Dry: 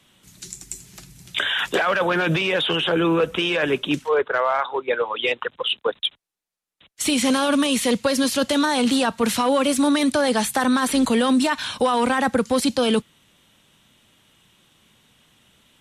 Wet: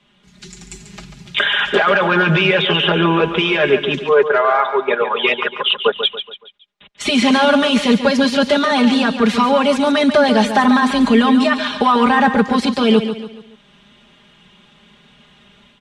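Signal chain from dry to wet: LPF 3800 Hz 12 dB/oct; comb 4.9 ms, depth 94%; AGC gain up to 8 dB; on a send: feedback echo 0.141 s, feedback 41%, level -9.5 dB; on the sum: gain -1 dB

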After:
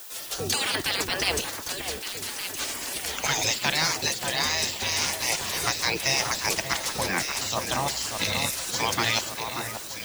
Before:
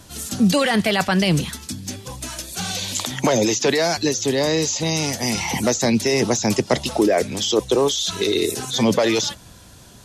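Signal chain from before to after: spectral gate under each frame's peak -15 dB weak; added noise violet -45 dBFS; on a send: echo with dull and thin repeats by turns 0.583 s, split 1800 Hz, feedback 72%, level -6 dB; on the sum: gain +1.5 dB

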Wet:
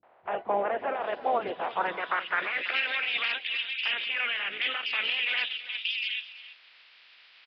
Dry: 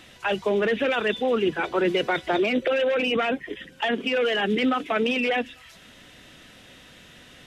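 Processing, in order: spectral limiter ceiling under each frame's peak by 20 dB; three bands offset in time lows, mids, highs 30/790 ms, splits 240/2700 Hz; band-pass sweep 710 Hz -> 2600 Hz, 1.57–2.85; on a send: echo 0.332 s -15.5 dB; on the sum: downsampling 11025 Hz; gain +2.5 dB

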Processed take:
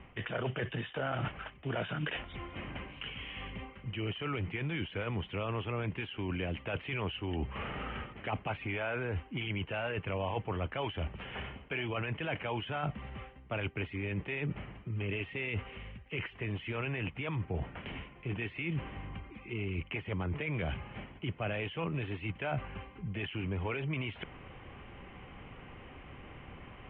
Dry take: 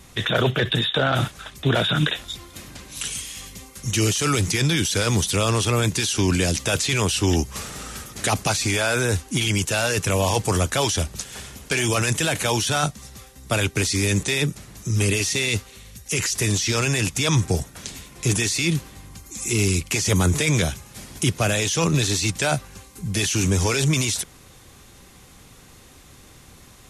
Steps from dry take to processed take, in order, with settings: reverse; compressor 6:1, threshold -33 dBFS, peak gain reduction 17 dB; reverse; rippled Chebyshev low-pass 3100 Hz, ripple 3 dB; gain +2 dB

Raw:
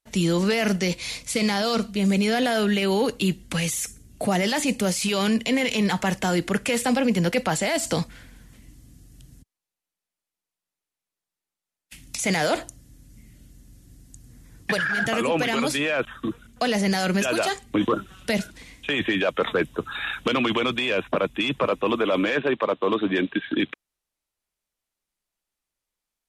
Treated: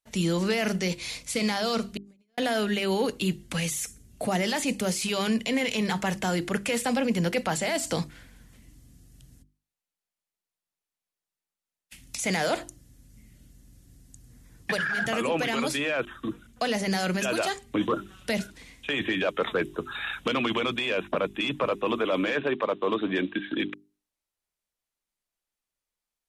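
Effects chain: 1.97–2.38 gate -15 dBFS, range -57 dB; notches 50/100/150/200/250/300/350/400 Hz; gain -3.5 dB

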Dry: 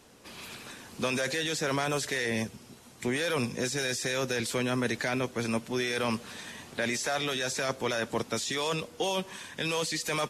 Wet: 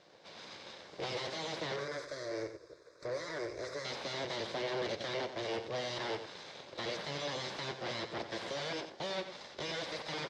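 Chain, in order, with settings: rattling part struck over -37 dBFS, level -31 dBFS; comb 0.8 ms, depth 86%; full-wave rectifier; 1.76–3.85 fixed phaser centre 810 Hz, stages 6; soft clip -24 dBFS, distortion -16 dB; speaker cabinet 180–4700 Hz, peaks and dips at 260 Hz -5 dB, 550 Hz +7 dB, 1300 Hz -8 dB, 2600 Hz -9 dB; echo 90 ms -10 dB

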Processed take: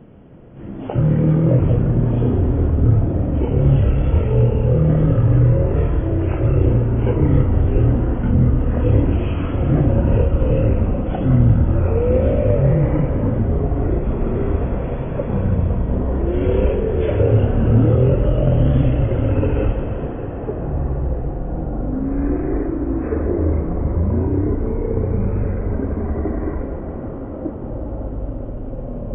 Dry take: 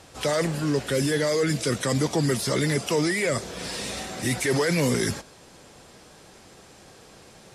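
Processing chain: Schroeder reverb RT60 1.1 s, combs from 30 ms, DRR 7 dB; echoes that change speed 81 ms, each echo -5 st, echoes 3; graphic EQ 125/250/500/1000/2000/4000/8000 Hz +4/+5/+8/+11/+10/-4/-9 dB; wide varispeed 0.259×; gain -2.5 dB

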